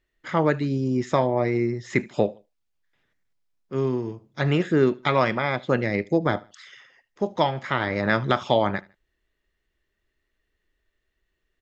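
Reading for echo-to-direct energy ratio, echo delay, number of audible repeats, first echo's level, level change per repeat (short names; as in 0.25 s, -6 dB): -22.5 dB, 76 ms, 2, -23.0 dB, -9.5 dB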